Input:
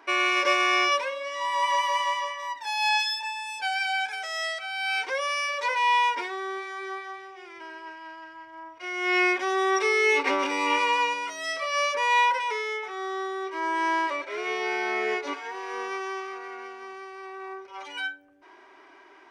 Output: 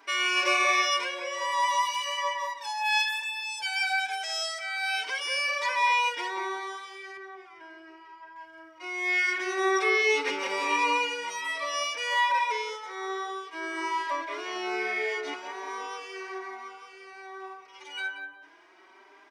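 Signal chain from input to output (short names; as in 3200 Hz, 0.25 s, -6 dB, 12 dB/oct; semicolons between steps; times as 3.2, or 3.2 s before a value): high shelf 2300 Hz +10 dB, from 7.17 s -4 dB, from 8.36 s +7 dB; tape echo 0.181 s, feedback 48%, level -3 dB, low-pass 1300 Hz; endless flanger 4.6 ms +1.2 Hz; gain -3 dB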